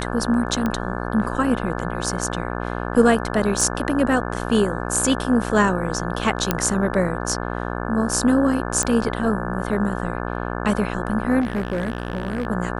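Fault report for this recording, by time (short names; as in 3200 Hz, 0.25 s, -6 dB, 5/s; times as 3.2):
buzz 60 Hz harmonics 29 -27 dBFS
0.66 pop -11 dBFS
3.61 gap 2.8 ms
6.51 pop -3 dBFS
8.83 pop -8 dBFS
11.4–12.47 clipped -19 dBFS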